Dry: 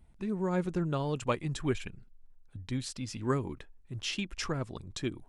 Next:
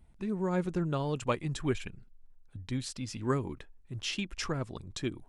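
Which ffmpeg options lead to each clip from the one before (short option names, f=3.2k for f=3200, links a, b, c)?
-af anull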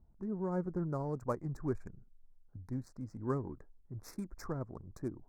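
-af "adynamicsmooth=sensitivity=7.5:basefreq=1.6k,asuperstop=centerf=3000:order=4:qfactor=0.59,volume=-4.5dB"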